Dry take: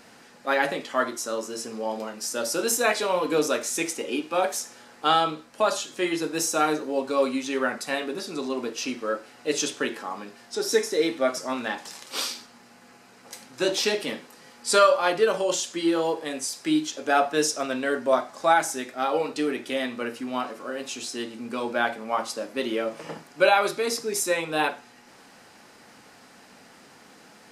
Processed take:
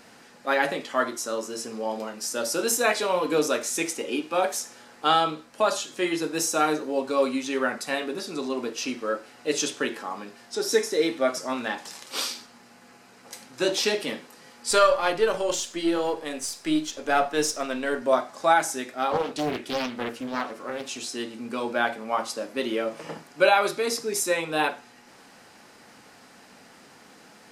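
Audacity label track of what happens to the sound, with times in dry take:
14.710000	18.020000	half-wave gain negative side -3 dB
19.110000	20.980000	Doppler distortion depth 0.66 ms

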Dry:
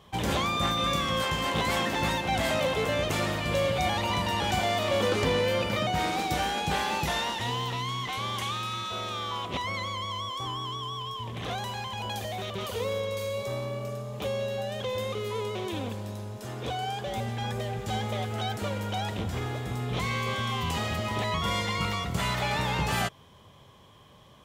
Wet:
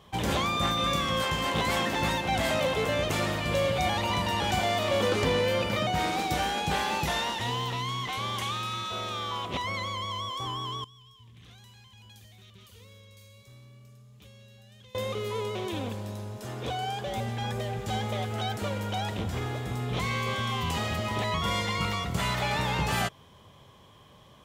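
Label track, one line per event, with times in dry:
10.840000	14.950000	passive tone stack bass-middle-treble 6-0-2

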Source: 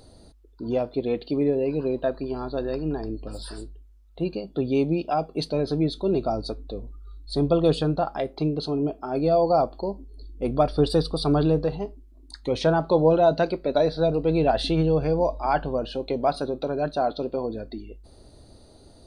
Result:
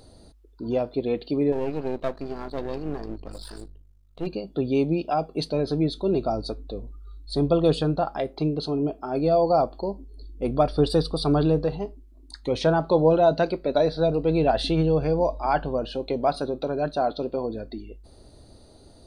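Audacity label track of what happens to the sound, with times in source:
1.520000	4.270000	half-wave gain negative side -12 dB

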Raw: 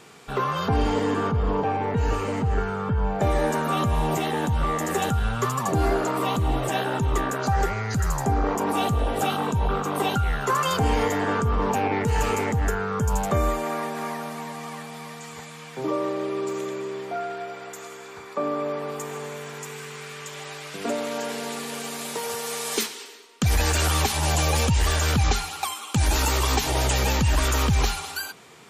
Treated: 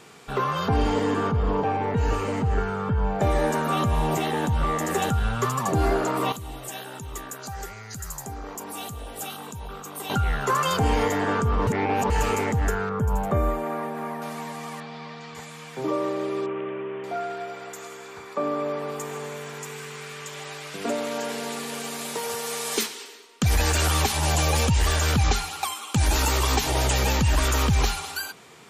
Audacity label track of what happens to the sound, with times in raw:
6.320000	10.100000	pre-emphasis coefficient 0.8
11.670000	12.100000	reverse
12.890000	14.220000	bell 5900 Hz -13.5 dB 2.3 oct
14.800000	15.350000	Chebyshev low-pass 4700 Hz, order 3
16.460000	17.040000	elliptic low-pass 3000 Hz

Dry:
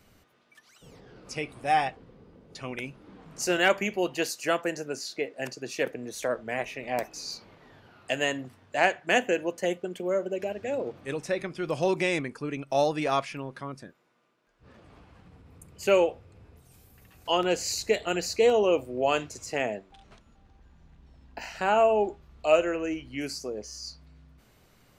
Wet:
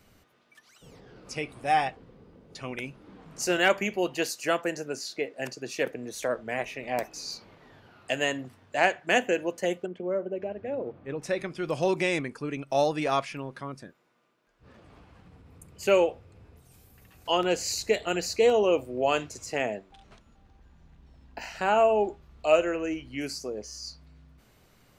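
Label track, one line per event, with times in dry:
9.860000	11.220000	tape spacing loss at 10 kHz 36 dB

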